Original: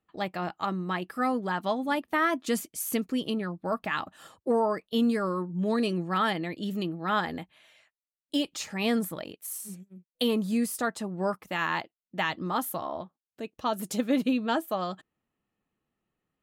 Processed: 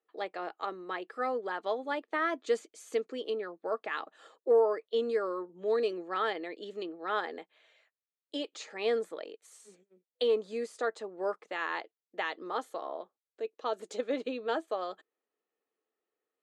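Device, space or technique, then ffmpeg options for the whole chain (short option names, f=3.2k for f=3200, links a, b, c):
phone speaker on a table: -af "highpass=f=340:w=0.5412,highpass=f=340:w=1.3066,equalizer=f=450:t=q:w=4:g=9,equalizer=f=960:t=q:w=4:g=-3,equalizer=f=2.8k:t=q:w=4:g=-4,equalizer=f=5.4k:t=q:w=4:g=-8,lowpass=f=6.6k:w=0.5412,lowpass=f=6.6k:w=1.3066,volume=-4.5dB"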